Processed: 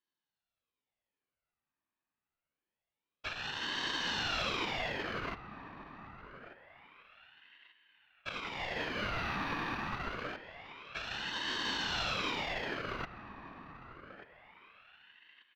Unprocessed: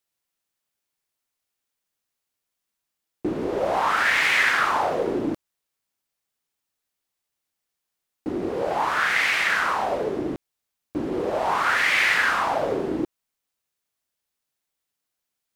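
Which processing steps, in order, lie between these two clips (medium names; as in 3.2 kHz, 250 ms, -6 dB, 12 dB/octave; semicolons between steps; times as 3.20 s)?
sorted samples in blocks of 64 samples; high-pass 480 Hz; comb 2.4 ms, depth 71%; whisper effect; sample-and-hold 6×; saturation -16.5 dBFS, distortion -16 dB; distance through air 320 m; filtered feedback delay 1188 ms, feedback 41%, low-pass 980 Hz, level -11 dB; ring modulator with a swept carrier 1.4 kHz, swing 70%, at 0.26 Hz; trim -6.5 dB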